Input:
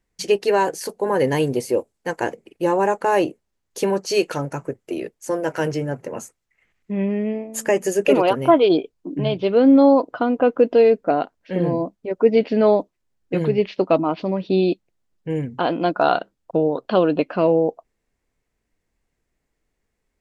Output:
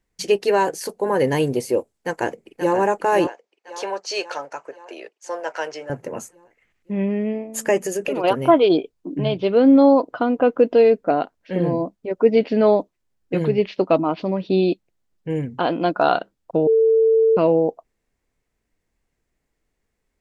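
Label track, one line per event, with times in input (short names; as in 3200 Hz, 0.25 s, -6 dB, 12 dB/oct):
1.930000	2.760000	echo throw 0.53 s, feedback 60%, level -7.5 dB
3.270000	5.900000	Chebyshev band-pass 690–5600 Hz
7.840000	8.240000	compressor 4:1, threshold -21 dBFS
16.670000	17.370000	bleep 447 Hz -12 dBFS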